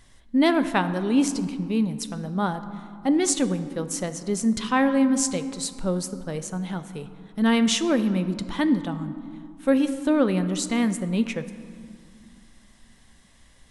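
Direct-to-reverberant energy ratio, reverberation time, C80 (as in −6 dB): 10.5 dB, 2.1 s, 13.5 dB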